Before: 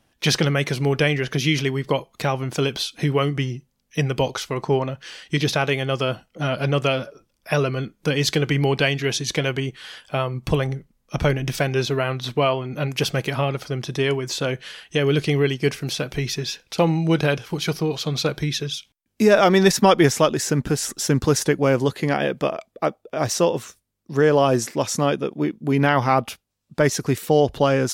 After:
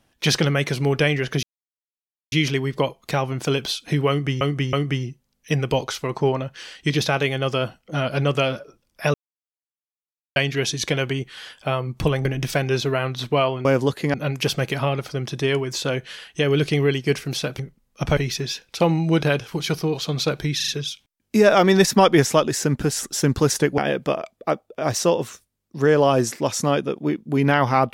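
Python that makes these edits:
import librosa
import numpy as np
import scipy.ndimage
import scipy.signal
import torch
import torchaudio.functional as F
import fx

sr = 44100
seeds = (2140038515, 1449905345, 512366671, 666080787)

y = fx.edit(x, sr, fx.insert_silence(at_s=1.43, length_s=0.89),
    fx.repeat(start_s=3.2, length_s=0.32, count=3),
    fx.silence(start_s=7.61, length_s=1.22),
    fx.move(start_s=10.72, length_s=0.58, to_s=16.15),
    fx.stutter(start_s=18.54, slice_s=0.04, count=4),
    fx.move(start_s=21.64, length_s=0.49, to_s=12.7), tone=tone)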